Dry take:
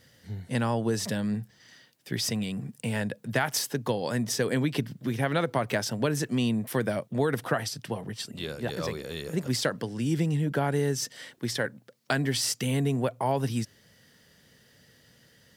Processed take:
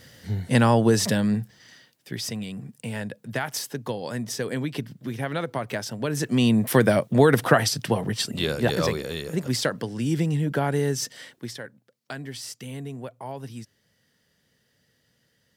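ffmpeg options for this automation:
-af "volume=10.6,afade=t=out:st=0.79:d=1.37:silence=0.281838,afade=t=in:st=6.03:d=0.68:silence=0.266073,afade=t=out:st=8.68:d=0.6:silence=0.446684,afade=t=out:st=11.11:d=0.5:silence=0.266073"

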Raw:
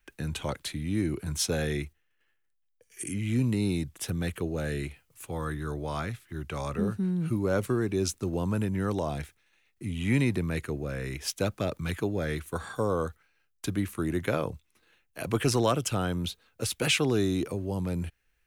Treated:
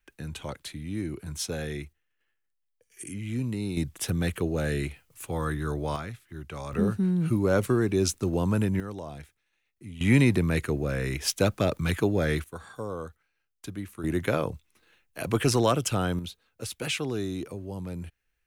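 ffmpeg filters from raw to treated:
-af "asetnsamples=n=441:p=0,asendcmd='3.77 volume volume 3.5dB;5.96 volume volume -3.5dB;6.73 volume volume 3.5dB;8.8 volume volume -8dB;10.01 volume volume 5dB;12.44 volume volume -7dB;14.04 volume volume 2dB;16.19 volume volume -5dB',volume=0.631"

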